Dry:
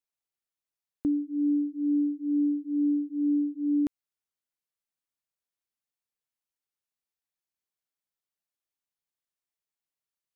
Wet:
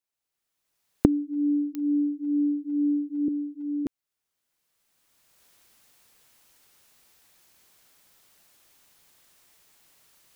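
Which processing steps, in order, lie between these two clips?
camcorder AGC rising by 19 dB per second
0:03.28–0:03.86: high-pass filter 360 Hz 12 dB per octave
digital clicks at 0:01.75, −22 dBFS
level +1 dB

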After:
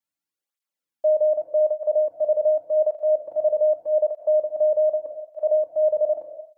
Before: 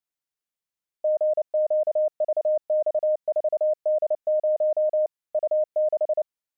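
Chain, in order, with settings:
rectangular room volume 2,200 cubic metres, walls furnished, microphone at 2.3 metres
through-zero flanger with one copy inverted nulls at 0.84 Hz, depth 2.9 ms
level +2.5 dB

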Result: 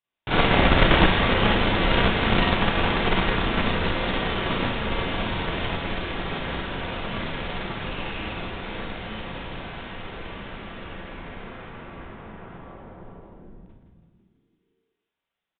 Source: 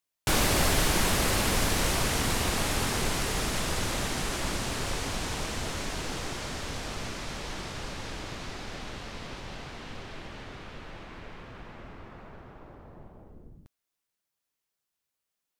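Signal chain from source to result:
0:07.83–0:08.25: parametric band 2,700 Hz +8.5 dB 0.25 octaves
on a send: echo with shifted repeats 164 ms, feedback 61%, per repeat −58 Hz, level −7.5 dB
on the sum: four-comb reverb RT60 0.53 s, combs from 33 ms, DRR −8.5 dB
harmonic generator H 2 −9 dB, 7 −28 dB, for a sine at −0.5 dBFS
downsampling to 8,000 Hz
level −1 dB

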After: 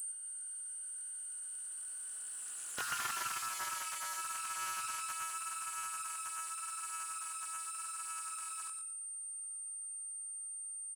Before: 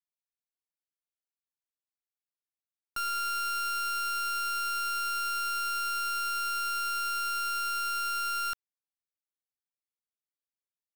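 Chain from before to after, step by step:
compressor on every frequency bin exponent 0.4
source passing by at 0:02.98, 22 m/s, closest 7.3 metres
high-pass filter 430 Hz 6 dB per octave
downward compressor 2.5 to 1, threshold −59 dBFS, peak gain reduction 18 dB
chorus effect 0.86 Hz, delay 16 ms, depth 6.1 ms
steady tone 8,800 Hz −51 dBFS
on a send: repeating echo 117 ms, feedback 32%, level −7 dB
on the sum: highs frequency-modulated by the lows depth 0.98 ms
level +13.5 dB

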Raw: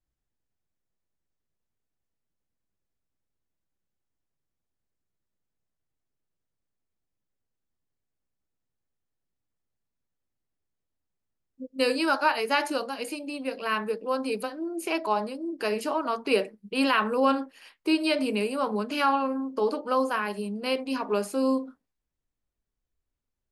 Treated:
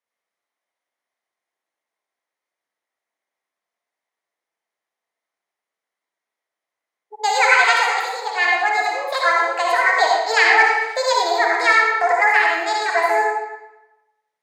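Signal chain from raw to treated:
tape wow and flutter 19 cents
loudspeaker in its box 410–6,100 Hz, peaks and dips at 420 Hz +4 dB, 1,200 Hz +8 dB, 1,700 Hz −5 dB, 2,800 Hz −4 dB, 4,700 Hz −7 dB
convolution reverb RT60 1.6 s, pre-delay 54 ms, DRR −2 dB
change of speed 1.63×
level +6 dB

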